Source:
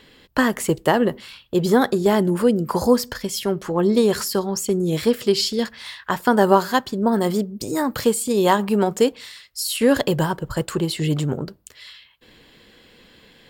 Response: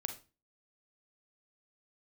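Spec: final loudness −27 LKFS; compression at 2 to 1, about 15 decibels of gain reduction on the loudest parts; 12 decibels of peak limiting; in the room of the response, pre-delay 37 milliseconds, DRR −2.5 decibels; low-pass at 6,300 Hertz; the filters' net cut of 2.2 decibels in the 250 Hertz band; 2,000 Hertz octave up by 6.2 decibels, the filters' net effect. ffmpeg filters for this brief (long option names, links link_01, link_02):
-filter_complex "[0:a]lowpass=6300,equalizer=frequency=250:width_type=o:gain=-3,equalizer=frequency=2000:width_type=o:gain=8,acompressor=threshold=-40dB:ratio=2,alimiter=level_in=2.5dB:limit=-24dB:level=0:latency=1,volume=-2.5dB,asplit=2[link_01][link_02];[1:a]atrim=start_sample=2205,adelay=37[link_03];[link_02][link_03]afir=irnorm=-1:irlink=0,volume=2.5dB[link_04];[link_01][link_04]amix=inputs=2:normalize=0,volume=5.5dB"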